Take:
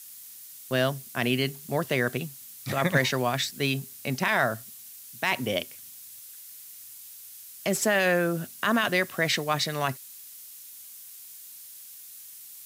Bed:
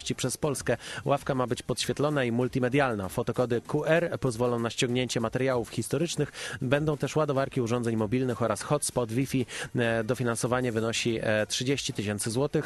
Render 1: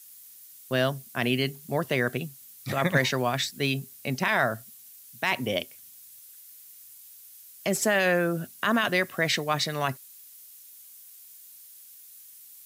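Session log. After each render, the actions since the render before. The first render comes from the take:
broadband denoise 6 dB, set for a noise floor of −46 dBFS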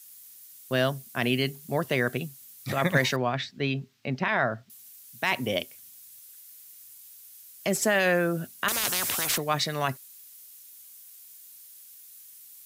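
0:03.16–0:04.70: high-frequency loss of the air 210 metres
0:08.68–0:09.38: every bin compressed towards the loudest bin 10 to 1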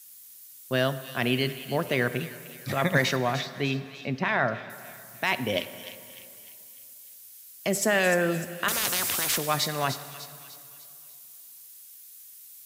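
delay with a high-pass on its return 300 ms, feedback 46%, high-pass 3,200 Hz, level −8.5 dB
dense smooth reverb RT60 2.5 s, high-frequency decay 0.75×, pre-delay 0 ms, DRR 12 dB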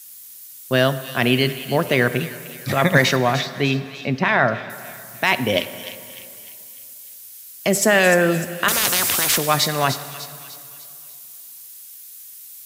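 level +8 dB

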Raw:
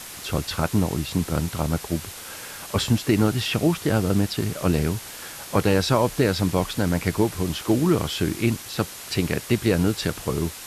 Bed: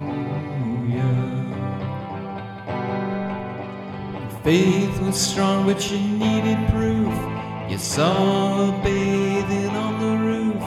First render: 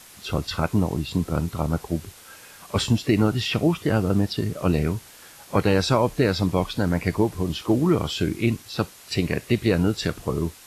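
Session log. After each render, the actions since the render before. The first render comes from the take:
noise reduction from a noise print 9 dB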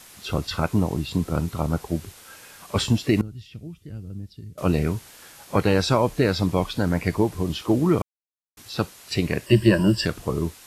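0:03.21–0:04.58: guitar amp tone stack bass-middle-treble 10-0-1
0:08.02–0:08.57: silence
0:09.46–0:10.06: EQ curve with evenly spaced ripples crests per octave 1.3, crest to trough 16 dB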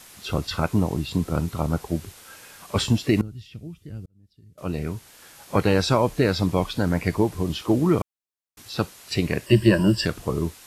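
0:04.06–0:05.56: fade in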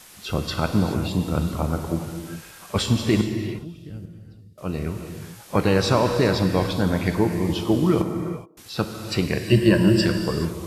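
delay with a band-pass on its return 152 ms, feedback 47%, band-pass 540 Hz, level −24 dB
reverb whose tail is shaped and stops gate 450 ms flat, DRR 5 dB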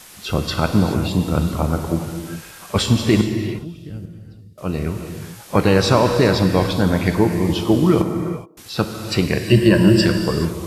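level +4.5 dB
brickwall limiter −2 dBFS, peak gain reduction 2 dB

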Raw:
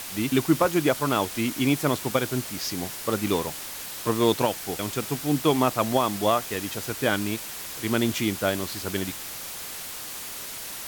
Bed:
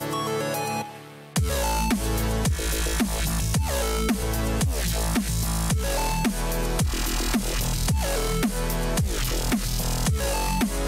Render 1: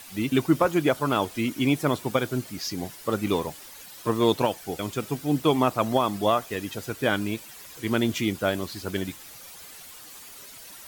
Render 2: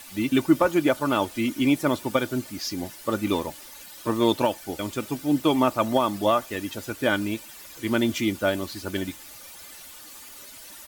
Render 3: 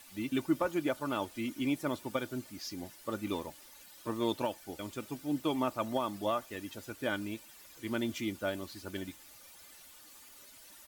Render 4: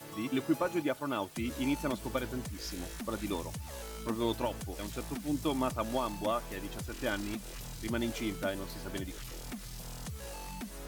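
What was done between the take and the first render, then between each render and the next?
broadband denoise 11 dB, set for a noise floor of −37 dBFS
comb filter 3.4 ms, depth 40%
level −11 dB
mix in bed −18.5 dB

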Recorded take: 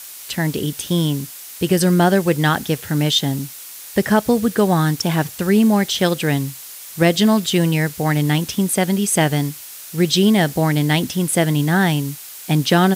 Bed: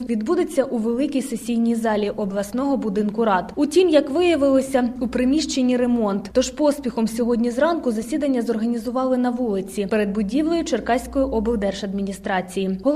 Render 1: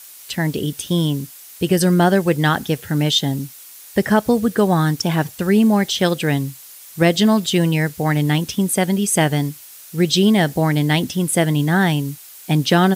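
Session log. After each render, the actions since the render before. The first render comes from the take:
broadband denoise 6 dB, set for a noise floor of −36 dBFS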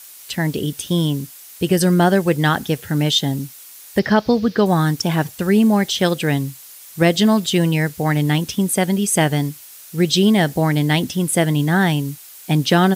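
0:03.99–0:04.66: high shelf with overshoot 6,400 Hz −11 dB, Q 3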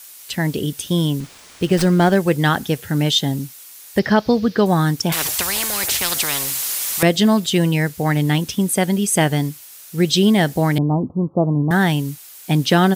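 0:01.20–0:02.17: windowed peak hold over 3 samples
0:05.12–0:07.03: every bin compressed towards the loudest bin 10 to 1
0:10.78–0:11.71: Butterworth low-pass 1,200 Hz 96 dB per octave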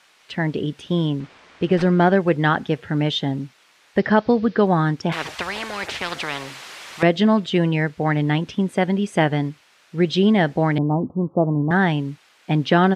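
low-pass filter 2,500 Hz 12 dB per octave
low-shelf EQ 110 Hz −9.5 dB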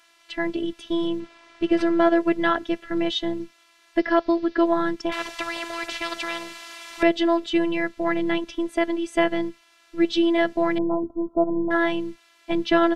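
phases set to zero 336 Hz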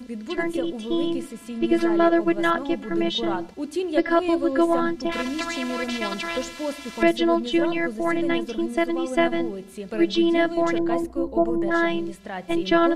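mix in bed −11 dB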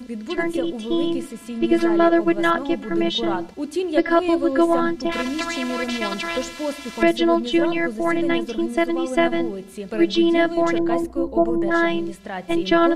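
level +2.5 dB
brickwall limiter −3 dBFS, peak gain reduction 1.5 dB

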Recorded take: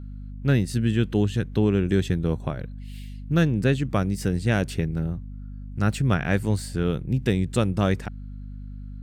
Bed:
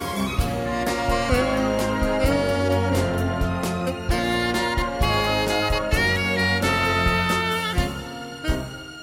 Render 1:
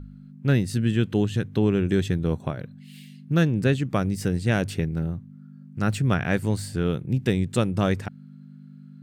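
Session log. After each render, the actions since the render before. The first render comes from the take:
hum removal 50 Hz, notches 2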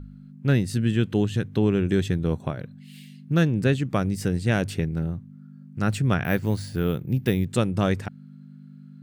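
0:06.24–0:07.45: bad sample-rate conversion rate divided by 3×, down filtered, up hold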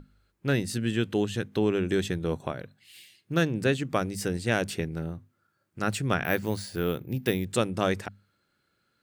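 bass and treble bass −8 dB, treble +2 dB
mains-hum notches 50/100/150/200/250 Hz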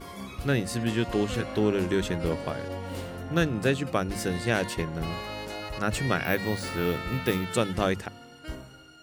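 mix in bed −14.5 dB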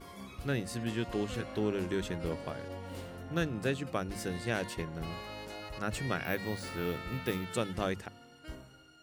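level −7.5 dB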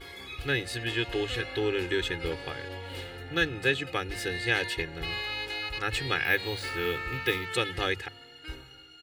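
flat-topped bell 2,600 Hz +10 dB
comb filter 2.4 ms, depth 85%

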